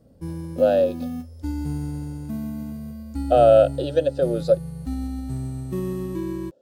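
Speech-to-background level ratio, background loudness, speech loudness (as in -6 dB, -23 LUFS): 11.5 dB, -31.0 LUFS, -19.5 LUFS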